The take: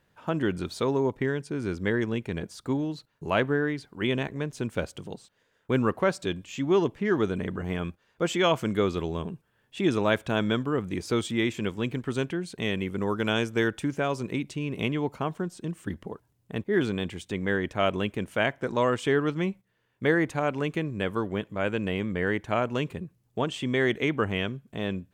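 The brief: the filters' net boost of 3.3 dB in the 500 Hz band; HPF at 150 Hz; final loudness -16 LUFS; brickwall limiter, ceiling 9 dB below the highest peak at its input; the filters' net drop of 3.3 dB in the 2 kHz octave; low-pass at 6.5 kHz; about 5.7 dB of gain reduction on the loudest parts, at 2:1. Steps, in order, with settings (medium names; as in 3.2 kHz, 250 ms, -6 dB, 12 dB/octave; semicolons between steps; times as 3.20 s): high-pass 150 Hz; low-pass 6.5 kHz; peaking EQ 500 Hz +4.5 dB; peaking EQ 2 kHz -4.5 dB; compression 2:1, threshold -27 dBFS; trim +18.5 dB; peak limiter -4.5 dBFS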